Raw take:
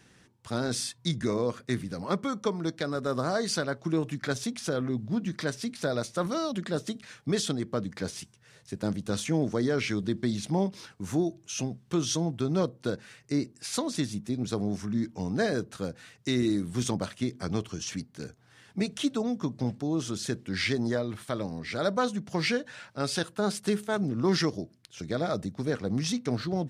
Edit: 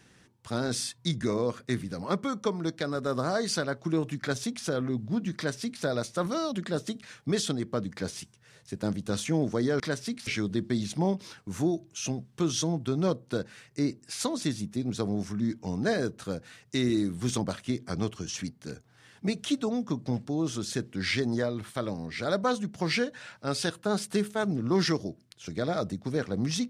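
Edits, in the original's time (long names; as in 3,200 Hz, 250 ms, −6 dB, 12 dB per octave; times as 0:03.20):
0:05.36–0:05.83: duplicate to 0:09.80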